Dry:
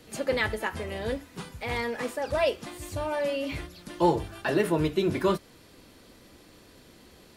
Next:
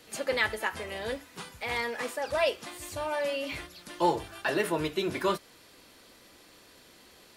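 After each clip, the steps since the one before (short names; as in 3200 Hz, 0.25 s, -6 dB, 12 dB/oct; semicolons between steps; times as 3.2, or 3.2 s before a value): low shelf 390 Hz -12 dB; gain +1.5 dB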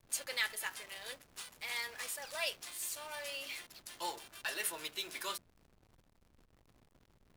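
differentiator; de-hum 181.5 Hz, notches 2; backlash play -46.5 dBFS; gain +4 dB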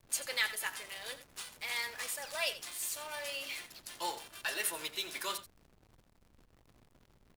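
echo 86 ms -14 dB; gain +2.5 dB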